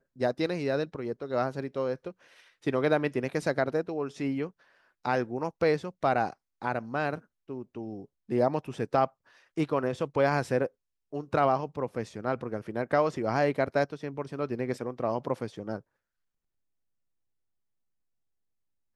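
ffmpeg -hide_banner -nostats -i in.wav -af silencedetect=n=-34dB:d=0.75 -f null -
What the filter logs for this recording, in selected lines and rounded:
silence_start: 15.78
silence_end: 18.95 | silence_duration: 3.17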